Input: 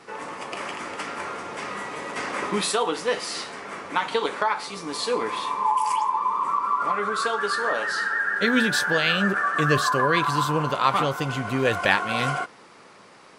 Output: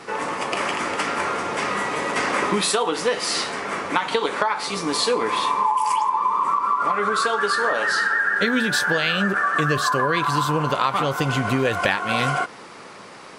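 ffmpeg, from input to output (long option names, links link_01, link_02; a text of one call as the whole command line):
ffmpeg -i in.wav -af "acompressor=threshold=-26dB:ratio=6,volume=8.5dB" out.wav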